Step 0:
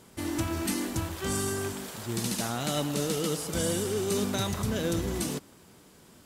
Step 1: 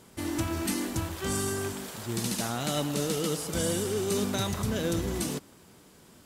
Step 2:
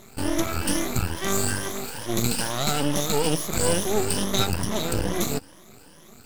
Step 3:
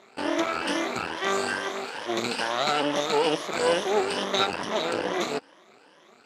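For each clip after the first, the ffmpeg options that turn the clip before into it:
ffmpeg -i in.wav -af anull out.wav
ffmpeg -i in.wav -af "afftfilt=real='re*pow(10,20/40*sin(2*PI*(1.2*log(max(b,1)*sr/1024/100)/log(2)-(2.3)*(pts-256)/sr)))':imag='im*pow(10,20/40*sin(2*PI*(1.2*log(max(b,1)*sr/1024/100)/log(2)-(2.3)*(pts-256)/sr)))':win_size=1024:overlap=0.75,aeval=exprs='max(val(0),0)':channel_layout=same,volume=5.5dB" out.wav
ffmpeg -i in.wav -filter_complex "[0:a]asplit=2[link_01][link_02];[link_02]acrusher=bits=4:mix=0:aa=0.5,volume=-5dB[link_03];[link_01][link_03]amix=inputs=2:normalize=0,highpass=420,lowpass=3400" out.wav

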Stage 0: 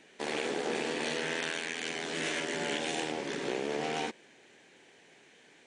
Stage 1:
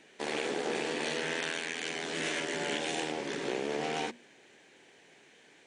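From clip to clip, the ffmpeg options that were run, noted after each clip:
ffmpeg -i in.wav -af "bandreject=frequency=60:width_type=h:width=6,bandreject=frequency=120:width_type=h:width=6,bandreject=frequency=180:width_type=h:width=6,bandreject=frequency=240:width_type=h:width=6" out.wav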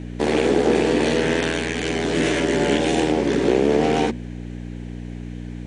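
ffmpeg -i in.wav -af "aeval=exprs='val(0)+0.00562*(sin(2*PI*60*n/s)+sin(2*PI*2*60*n/s)/2+sin(2*PI*3*60*n/s)/3+sin(2*PI*4*60*n/s)/4+sin(2*PI*5*60*n/s)/5)':channel_layout=same,equalizer=frequency=240:width_type=o:width=2.8:gain=12,volume=7.5dB" out.wav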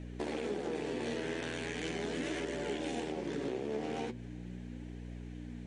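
ffmpeg -i in.wav -af "acompressor=threshold=-22dB:ratio=6,flanger=delay=1.5:depth=8.3:regen=59:speed=0.39:shape=triangular,volume=-7.5dB" out.wav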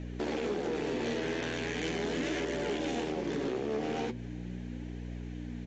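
ffmpeg -i in.wav -af "volume=32dB,asoftclip=hard,volume=-32dB,aresample=16000,aresample=44100,volume=4.5dB" out.wav

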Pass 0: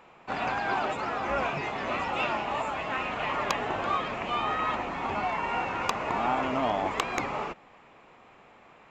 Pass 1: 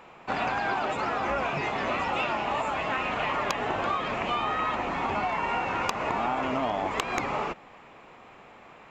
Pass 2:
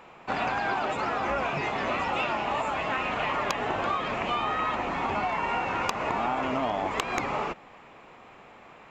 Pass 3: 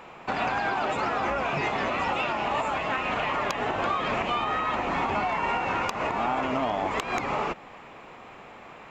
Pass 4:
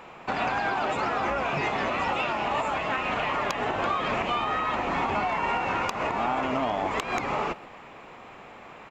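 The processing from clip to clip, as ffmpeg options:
ffmpeg -i in.wav -af "acompressor=threshold=-29dB:ratio=6,volume=4.5dB" out.wav
ffmpeg -i in.wav -af anull out.wav
ffmpeg -i in.wav -af "alimiter=limit=-22dB:level=0:latency=1:release=224,volume=4.5dB" out.wav
ffmpeg -i in.wav -filter_complex "[0:a]asplit=2[link_01][link_02];[link_02]adelay=130,highpass=300,lowpass=3400,asoftclip=type=hard:threshold=-26.5dB,volume=-18dB[link_03];[link_01][link_03]amix=inputs=2:normalize=0" out.wav

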